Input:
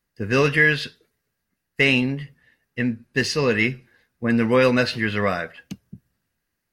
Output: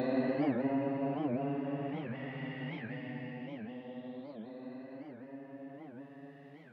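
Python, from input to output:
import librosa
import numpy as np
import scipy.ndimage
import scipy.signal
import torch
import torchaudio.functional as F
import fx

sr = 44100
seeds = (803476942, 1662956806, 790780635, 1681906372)

p1 = fx.lower_of_two(x, sr, delay_ms=1.1)
p2 = fx.spec_paint(p1, sr, seeds[0], shape='rise', start_s=1.53, length_s=0.27, low_hz=890.0, high_hz=4500.0, level_db=-31.0)
p3 = fx.env_lowpass_down(p2, sr, base_hz=930.0, full_db=-20.5)
p4 = p3 + fx.echo_feedback(p3, sr, ms=272, feedback_pct=15, wet_db=-16, dry=0)
p5 = fx.paulstretch(p4, sr, seeds[1], factor=17.0, window_s=0.1, from_s=2.06)
p6 = scipy.signal.sosfilt(scipy.signal.butter(2, 240.0, 'highpass', fs=sr, output='sos'), p5)
p7 = fx.peak_eq(p6, sr, hz=6400.0, db=-9.5, octaves=1.5)
p8 = fx.record_warp(p7, sr, rpm=78.0, depth_cents=250.0)
y = p8 * librosa.db_to_amplitude(-3.0)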